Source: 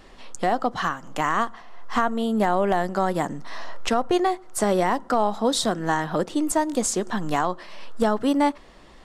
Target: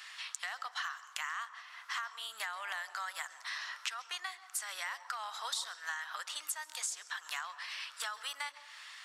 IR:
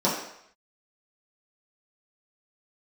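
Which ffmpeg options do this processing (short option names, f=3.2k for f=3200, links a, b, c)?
-filter_complex "[0:a]highpass=f=1.4k:w=0.5412,highpass=f=1.4k:w=1.3066,acompressor=threshold=-45dB:ratio=5,asplit=2[a][b];[1:a]atrim=start_sample=2205,adelay=134[c];[b][c]afir=irnorm=-1:irlink=0,volume=-28dB[d];[a][d]amix=inputs=2:normalize=0,volume=7dB"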